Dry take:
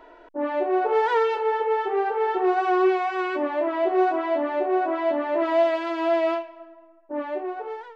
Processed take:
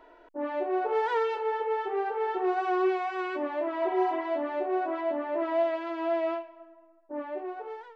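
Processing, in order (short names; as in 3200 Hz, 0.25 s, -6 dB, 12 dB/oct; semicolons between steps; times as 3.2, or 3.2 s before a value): 3.84–4.22 spectral repair 850–3900 Hz; 5.01–7.38 high shelf 4100 Hz -11 dB; gain -6 dB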